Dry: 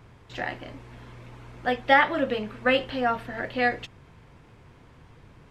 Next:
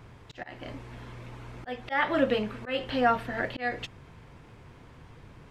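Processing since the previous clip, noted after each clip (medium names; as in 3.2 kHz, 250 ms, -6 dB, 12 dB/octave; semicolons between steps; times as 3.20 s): slow attack 261 ms; trim +1.5 dB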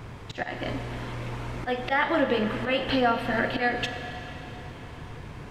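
compression 3:1, threshold -32 dBFS, peak gain reduction 10.5 dB; Schroeder reverb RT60 3.7 s, combs from 30 ms, DRR 7 dB; trim +9 dB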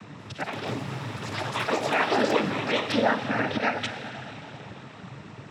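noise-vocoded speech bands 12; ever faster or slower copies 190 ms, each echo +6 st, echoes 3, each echo -6 dB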